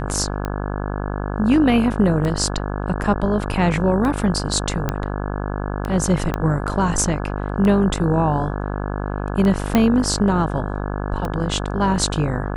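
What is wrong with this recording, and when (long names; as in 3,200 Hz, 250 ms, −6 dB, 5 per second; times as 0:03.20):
mains buzz 50 Hz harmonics 34 −25 dBFS
scratch tick 33 1/3 rpm −13 dBFS
0:04.89: click −8 dBFS
0:06.34: click −9 dBFS
0:09.75: click −4 dBFS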